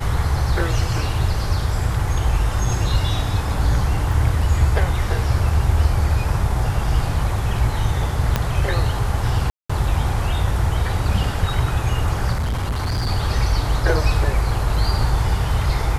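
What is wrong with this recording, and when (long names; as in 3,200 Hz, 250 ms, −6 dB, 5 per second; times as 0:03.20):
0:04.12: drop-out 2.5 ms
0:08.36: click −4 dBFS
0:09.50–0:09.70: drop-out 195 ms
0:12.32–0:13.08: clipping −18.5 dBFS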